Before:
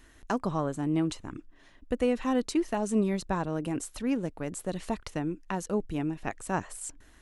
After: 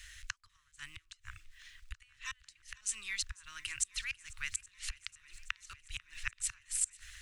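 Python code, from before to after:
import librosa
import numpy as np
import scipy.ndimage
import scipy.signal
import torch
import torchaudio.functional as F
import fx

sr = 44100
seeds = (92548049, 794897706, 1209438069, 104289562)

p1 = fx.quant_dither(x, sr, seeds[0], bits=12, dither='none')
p2 = fx.band_shelf(p1, sr, hz=4100.0, db=9.0, octaves=2.5)
p3 = fx.rider(p2, sr, range_db=10, speed_s=2.0)
p4 = fx.gate_flip(p3, sr, shuts_db=-18.0, range_db=-31)
p5 = scipy.signal.sosfilt(scipy.signal.cheby2(4, 40, [160.0, 790.0], 'bandstop', fs=sr, output='sos'), p4)
y = p5 + fx.echo_swing(p5, sr, ms=824, ratio=1.5, feedback_pct=67, wet_db=-22.0, dry=0)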